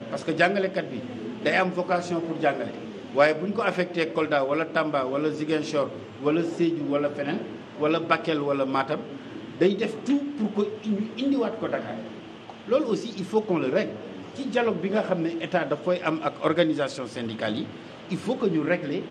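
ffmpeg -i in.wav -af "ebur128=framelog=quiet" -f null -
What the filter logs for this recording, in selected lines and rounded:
Integrated loudness:
  I:         -26.2 LUFS
  Threshold: -36.5 LUFS
Loudness range:
  LRA:         2.5 LU
  Threshold: -46.5 LUFS
  LRA low:   -27.8 LUFS
  LRA high:  -25.2 LUFS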